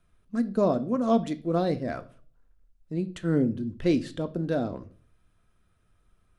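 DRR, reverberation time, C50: 10.0 dB, 0.45 s, 18.5 dB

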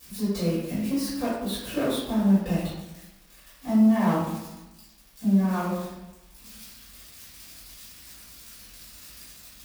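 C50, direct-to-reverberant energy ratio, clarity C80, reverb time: 0.0 dB, -13.0 dB, 3.0 dB, 1.0 s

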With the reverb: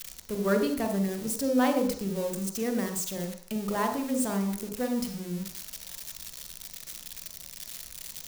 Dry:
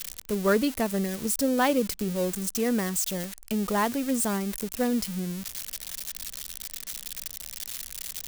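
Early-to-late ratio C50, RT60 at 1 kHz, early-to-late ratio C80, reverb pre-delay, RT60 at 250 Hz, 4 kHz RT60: 7.0 dB, 0.55 s, 10.0 dB, 38 ms, 0.50 s, 0.60 s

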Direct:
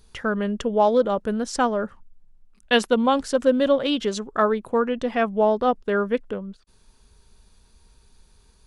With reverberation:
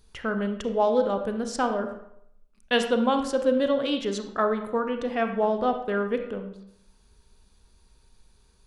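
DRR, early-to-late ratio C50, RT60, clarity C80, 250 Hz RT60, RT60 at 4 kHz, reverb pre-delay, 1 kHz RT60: 6.0 dB, 8.0 dB, 0.75 s, 10.5 dB, 0.70 s, 0.50 s, 31 ms, 0.75 s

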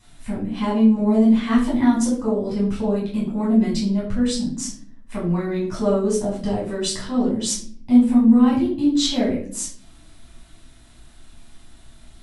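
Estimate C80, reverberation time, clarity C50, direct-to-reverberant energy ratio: 10.0 dB, 0.50 s, 5.0 dB, -7.5 dB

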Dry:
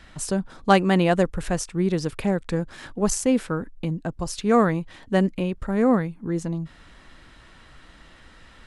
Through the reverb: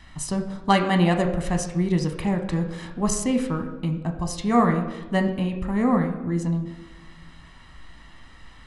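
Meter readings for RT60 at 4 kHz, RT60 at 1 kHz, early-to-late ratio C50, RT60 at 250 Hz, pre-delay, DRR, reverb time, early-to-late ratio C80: 0.80 s, 1.1 s, 9.0 dB, 1.7 s, 12 ms, 4.5 dB, 1.2 s, 11.0 dB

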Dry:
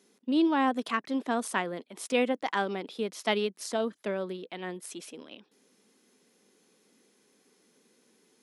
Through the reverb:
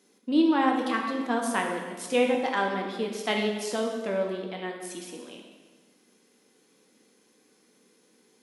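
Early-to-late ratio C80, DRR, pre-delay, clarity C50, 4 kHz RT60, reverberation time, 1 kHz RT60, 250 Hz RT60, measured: 5.5 dB, 0.5 dB, 3 ms, 4.0 dB, 1.2 s, 1.4 s, 1.4 s, 1.6 s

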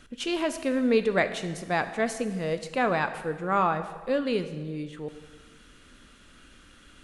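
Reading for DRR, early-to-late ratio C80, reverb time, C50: 9.5 dB, 12.5 dB, 1.4 s, 11.5 dB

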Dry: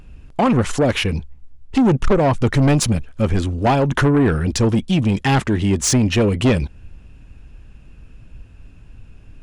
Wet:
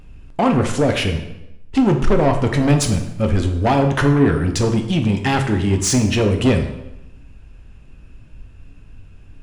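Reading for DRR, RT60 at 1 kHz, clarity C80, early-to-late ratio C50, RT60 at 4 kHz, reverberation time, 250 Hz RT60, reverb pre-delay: 4.0 dB, 0.90 s, 11.0 dB, 8.0 dB, 0.75 s, 0.90 s, 0.95 s, 6 ms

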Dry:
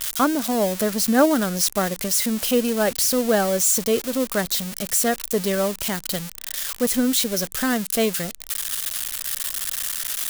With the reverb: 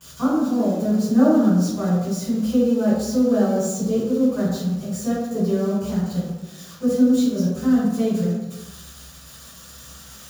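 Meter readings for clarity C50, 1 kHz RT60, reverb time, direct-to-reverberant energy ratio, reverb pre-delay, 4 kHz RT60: -1.0 dB, 1.0 s, 1.1 s, -13.5 dB, 3 ms, 0.85 s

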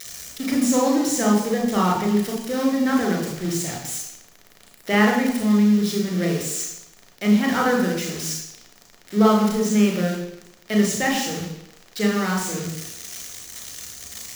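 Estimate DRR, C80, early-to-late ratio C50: -1.0 dB, 7.0 dB, 4.0 dB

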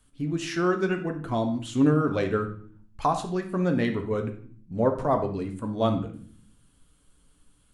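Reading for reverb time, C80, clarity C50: 0.50 s, 14.0 dB, 9.5 dB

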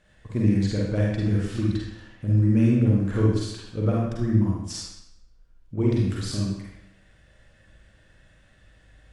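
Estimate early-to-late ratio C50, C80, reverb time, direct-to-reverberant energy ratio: -1.0 dB, 3.0 dB, 0.80 s, -4.0 dB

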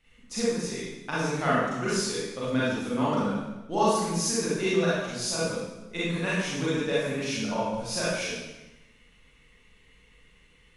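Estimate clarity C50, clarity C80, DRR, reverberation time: -4.0 dB, 1.5 dB, -9.5 dB, 1.0 s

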